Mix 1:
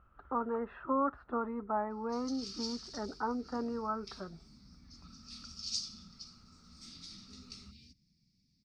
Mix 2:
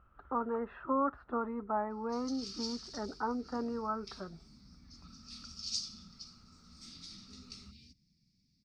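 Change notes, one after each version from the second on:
no change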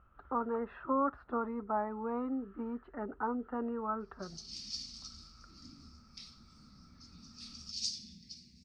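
background: entry +2.10 s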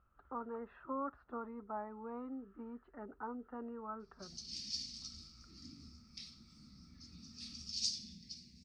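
speech -9.0 dB

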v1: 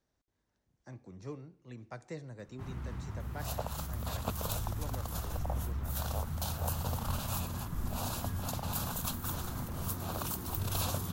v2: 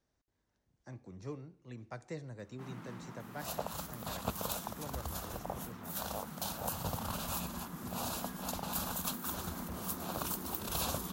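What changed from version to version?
first sound: add steep high-pass 160 Hz 72 dB/octave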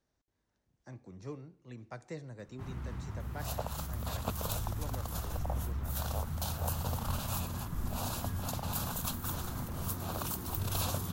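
first sound: remove steep high-pass 160 Hz 72 dB/octave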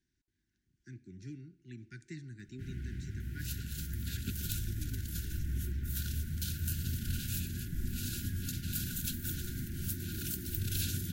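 master: add brick-wall FIR band-stop 400–1400 Hz

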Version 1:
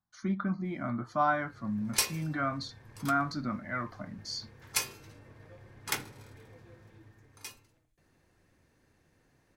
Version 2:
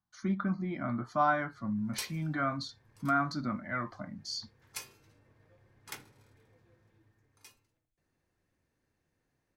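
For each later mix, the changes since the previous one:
background -11.5 dB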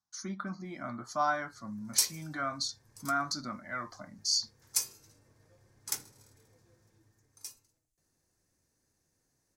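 speech: add bass shelf 360 Hz -10.5 dB; master: add resonant high shelf 4.2 kHz +12 dB, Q 1.5

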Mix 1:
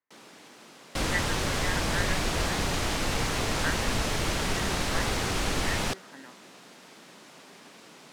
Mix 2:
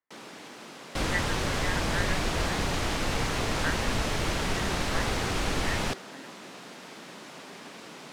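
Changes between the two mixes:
first sound +6.5 dB; master: add treble shelf 5.4 kHz -5 dB

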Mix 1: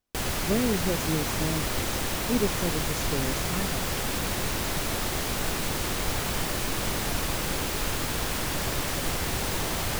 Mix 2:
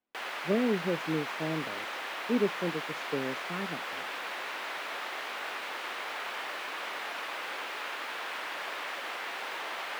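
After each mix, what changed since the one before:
background: add Bessel high-pass 1 kHz, order 2; master: add three-band isolator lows -22 dB, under 180 Hz, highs -22 dB, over 3.2 kHz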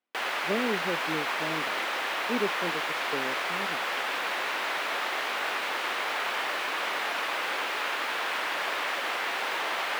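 speech: add bass shelf 170 Hz -10 dB; background +7.0 dB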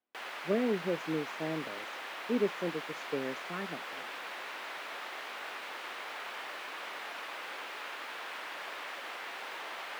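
background -11.5 dB

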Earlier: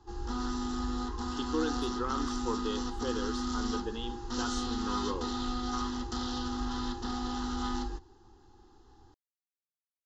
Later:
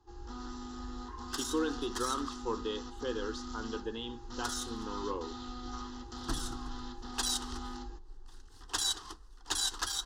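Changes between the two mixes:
first sound -8.5 dB; second sound: unmuted; master: add peaking EQ 190 Hz -7 dB 0.35 oct

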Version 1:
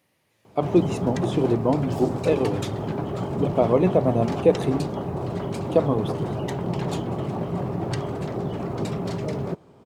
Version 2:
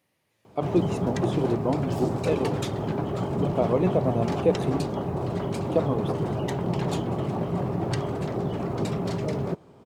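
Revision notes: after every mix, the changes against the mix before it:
speech -4.5 dB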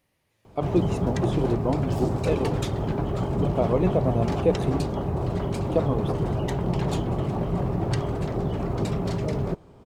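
master: remove high-pass 120 Hz 12 dB/octave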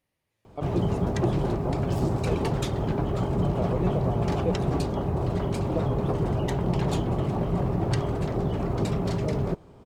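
speech -8.0 dB

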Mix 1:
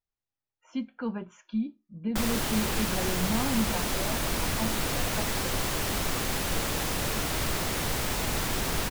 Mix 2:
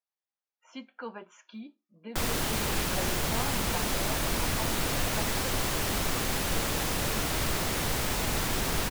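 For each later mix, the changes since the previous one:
speech: add high-pass 490 Hz 12 dB/octave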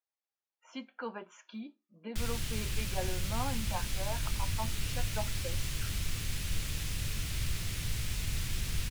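background: add FFT filter 110 Hz 0 dB, 250 Hz -15 dB, 810 Hz -23 dB, 2.5 kHz -7 dB, 11 kHz -8 dB, 16 kHz -13 dB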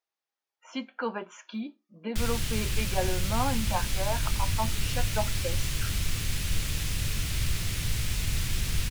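speech +8.0 dB; background +5.5 dB

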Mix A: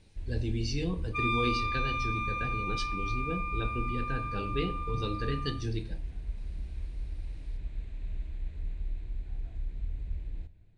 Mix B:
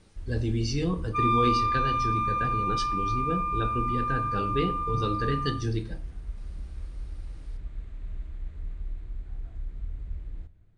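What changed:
speech +5.0 dB; master: add graphic EQ with 31 bands 1.25 kHz +10 dB, 2.5 kHz -6 dB, 4 kHz -5 dB

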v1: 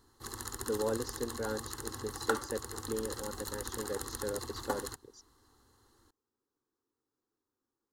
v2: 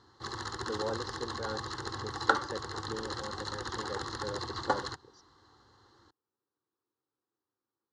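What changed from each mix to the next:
background +7.5 dB; master: add cabinet simulation 100–5100 Hz, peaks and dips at 250 Hz -9 dB, 430 Hz -4 dB, 2.5 kHz -7 dB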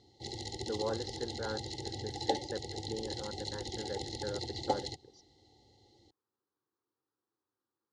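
background: add brick-wall FIR band-stop 880–1900 Hz

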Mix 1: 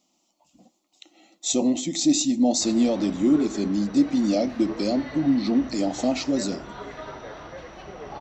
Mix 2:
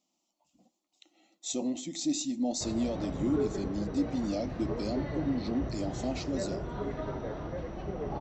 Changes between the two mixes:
speech -10.5 dB; background: add tilt shelf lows +9 dB, about 640 Hz

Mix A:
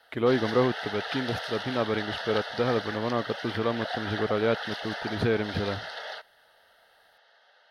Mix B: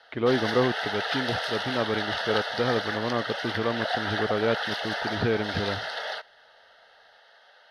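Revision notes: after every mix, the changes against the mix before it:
speech: add low-pass 4.1 kHz 12 dB/octave; background +5.0 dB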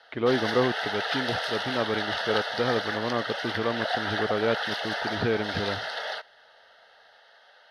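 speech: add bass shelf 160 Hz -3.5 dB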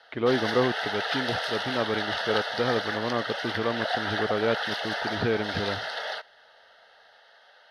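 no change

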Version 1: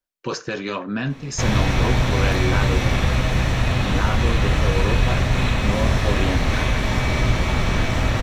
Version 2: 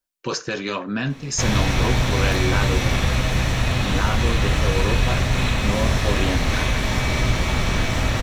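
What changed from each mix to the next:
background: send -9.5 dB; master: add treble shelf 3.7 kHz +6.5 dB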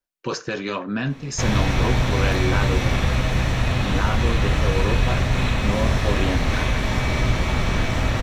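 master: add treble shelf 3.7 kHz -6.5 dB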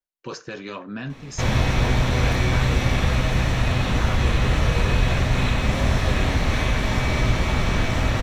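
speech -7.0 dB

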